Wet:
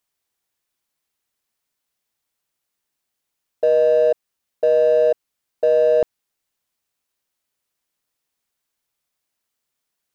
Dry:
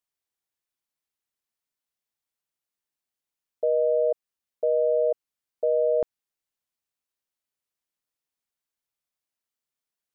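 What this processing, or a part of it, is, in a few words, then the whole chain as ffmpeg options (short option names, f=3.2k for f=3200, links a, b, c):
parallel distortion: -filter_complex "[0:a]asplit=2[a][b];[b]asoftclip=type=hard:threshold=-31dB,volume=-6dB[c];[a][c]amix=inputs=2:normalize=0,volume=6dB"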